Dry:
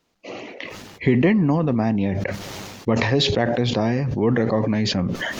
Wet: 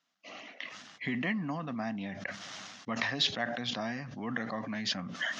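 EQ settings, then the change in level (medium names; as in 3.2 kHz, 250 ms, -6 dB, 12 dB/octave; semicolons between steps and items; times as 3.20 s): cabinet simulation 340–6200 Hz, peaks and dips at 350 Hz -9 dB, 530 Hz -6 dB, 900 Hz -9 dB, 2.4 kHz -6 dB, 4.4 kHz -5 dB; peaking EQ 430 Hz -14.5 dB 0.75 oct; -4.0 dB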